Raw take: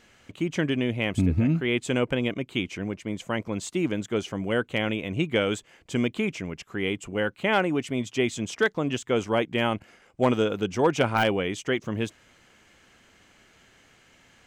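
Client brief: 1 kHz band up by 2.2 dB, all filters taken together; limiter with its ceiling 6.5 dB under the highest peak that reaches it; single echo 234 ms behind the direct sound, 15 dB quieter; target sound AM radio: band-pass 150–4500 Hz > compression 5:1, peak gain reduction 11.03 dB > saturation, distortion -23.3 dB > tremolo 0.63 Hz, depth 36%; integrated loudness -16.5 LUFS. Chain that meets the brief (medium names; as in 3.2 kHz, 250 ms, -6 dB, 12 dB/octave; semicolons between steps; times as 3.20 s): peaking EQ 1 kHz +3 dB; peak limiter -16 dBFS; band-pass 150–4500 Hz; delay 234 ms -15 dB; compression 5:1, threshold -32 dBFS; saturation -22 dBFS; tremolo 0.63 Hz, depth 36%; trim +22.5 dB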